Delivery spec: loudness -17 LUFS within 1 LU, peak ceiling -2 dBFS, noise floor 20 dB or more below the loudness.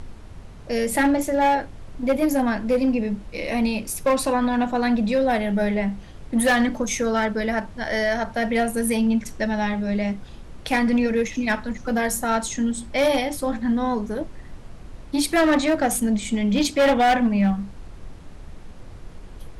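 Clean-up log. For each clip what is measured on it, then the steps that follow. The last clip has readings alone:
clipped 1.6%; flat tops at -14.0 dBFS; noise floor -41 dBFS; noise floor target -43 dBFS; loudness -22.5 LUFS; peak -14.0 dBFS; loudness target -17.0 LUFS
-> clip repair -14 dBFS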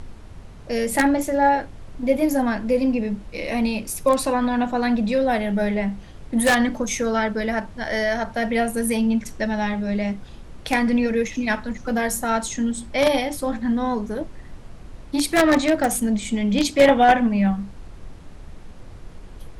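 clipped 0.0%; noise floor -41 dBFS; noise floor target -42 dBFS
-> noise print and reduce 6 dB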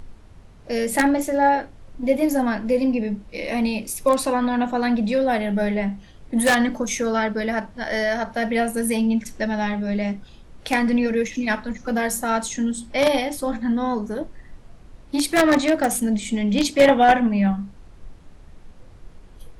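noise floor -46 dBFS; loudness -21.5 LUFS; peak -5.0 dBFS; loudness target -17.0 LUFS
-> gain +4.5 dB; limiter -2 dBFS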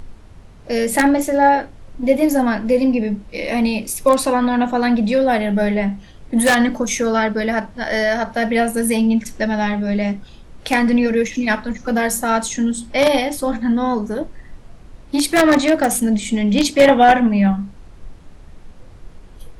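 loudness -17.5 LUFS; peak -2.0 dBFS; noise floor -41 dBFS

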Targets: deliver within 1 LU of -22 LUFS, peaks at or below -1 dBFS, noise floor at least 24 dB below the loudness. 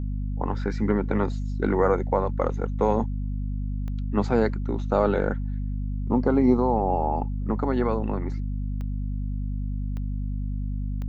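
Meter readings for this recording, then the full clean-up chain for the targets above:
clicks 4; hum 50 Hz; harmonics up to 250 Hz; hum level -26 dBFS; loudness -26.5 LUFS; peak -8.0 dBFS; loudness target -22.0 LUFS
-> de-click; notches 50/100/150/200/250 Hz; gain +4.5 dB

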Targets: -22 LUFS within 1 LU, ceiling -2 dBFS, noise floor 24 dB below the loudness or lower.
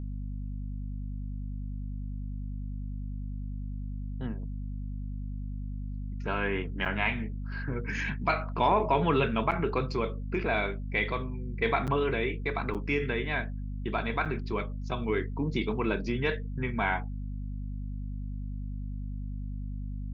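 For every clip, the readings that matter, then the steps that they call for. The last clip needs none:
dropouts 5; longest dropout 7.5 ms; hum 50 Hz; harmonics up to 250 Hz; hum level -33 dBFS; loudness -32.5 LUFS; peak -13.0 dBFS; loudness target -22.0 LUFS
-> interpolate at 6.85/9.51/11.87/12.74/14.25, 7.5 ms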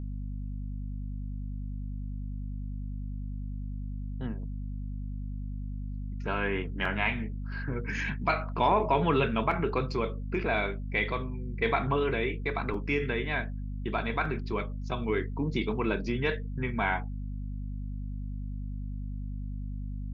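dropouts 0; hum 50 Hz; harmonics up to 250 Hz; hum level -33 dBFS
-> de-hum 50 Hz, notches 5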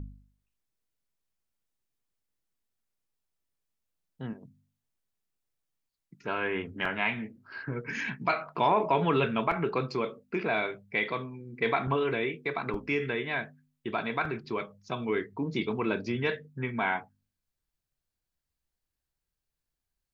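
hum none; loudness -31.0 LUFS; peak -13.0 dBFS; loudness target -22.0 LUFS
-> gain +9 dB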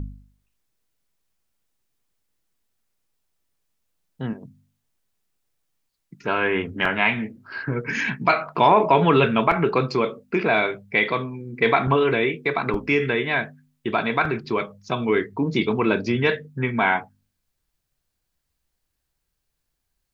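loudness -22.0 LUFS; peak -4.0 dBFS; noise floor -78 dBFS

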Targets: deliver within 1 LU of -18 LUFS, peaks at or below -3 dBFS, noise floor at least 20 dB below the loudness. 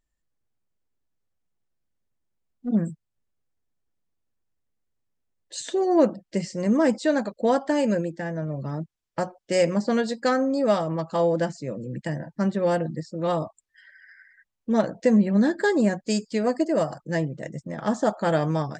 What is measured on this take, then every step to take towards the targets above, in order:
loudness -24.5 LUFS; peak -8.5 dBFS; loudness target -18.0 LUFS
-> gain +6.5 dB; limiter -3 dBFS

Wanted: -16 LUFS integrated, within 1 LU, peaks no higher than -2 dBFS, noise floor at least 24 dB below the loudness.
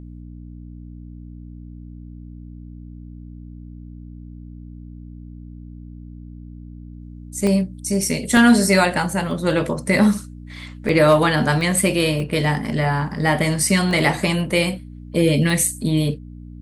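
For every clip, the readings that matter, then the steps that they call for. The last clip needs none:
dropouts 8; longest dropout 1.2 ms; hum 60 Hz; harmonics up to 300 Hz; hum level -34 dBFS; loudness -18.5 LUFS; peak -3.5 dBFS; loudness target -16.0 LUFS
-> interpolate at 7.47/8.37/9.31/10.89/11.61/12.2/13.91/15.5, 1.2 ms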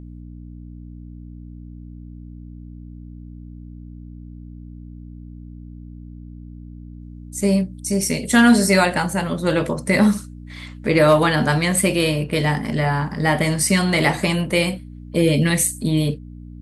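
dropouts 0; hum 60 Hz; harmonics up to 300 Hz; hum level -34 dBFS
-> de-hum 60 Hz, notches 5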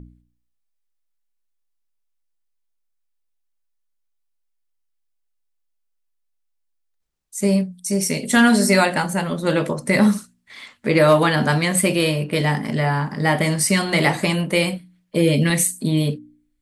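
hum none; loudness -19.0 LUFS; peak -3.5 dBFS; loudness target -16.0 LUFS
-> gain +3 dB; limiter -2 dBFS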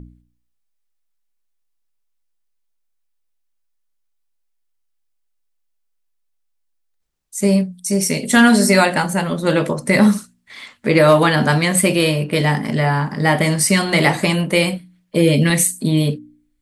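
loudness -16.0 LUFS; peak -2.0 dBFS; noise floor -68 dBFS

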